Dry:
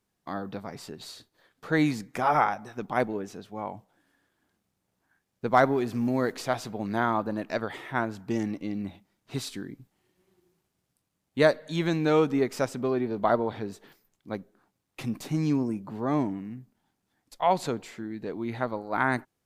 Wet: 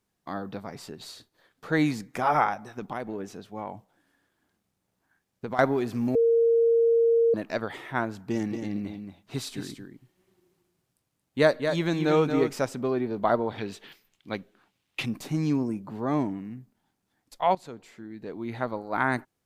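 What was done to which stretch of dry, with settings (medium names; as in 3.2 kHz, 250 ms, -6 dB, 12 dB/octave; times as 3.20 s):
2.71–5.59 s: compression, threshold -28 dBFS
6.15–7.34 s: bleep 462 Hz -17.5 dBFS
8.12–12.53 s: delay 227 ms -7 dB
13.58–15.06 s: peaking EQ 2.9 kHz +13 dB 1.4 oct
17.55–18.70 s: fade in, from -16 dB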